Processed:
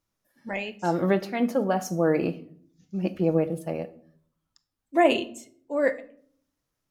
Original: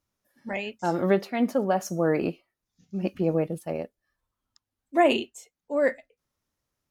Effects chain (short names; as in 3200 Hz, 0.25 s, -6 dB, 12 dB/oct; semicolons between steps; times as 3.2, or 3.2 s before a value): shoebox room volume 780 m³, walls furnished, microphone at 0.66 m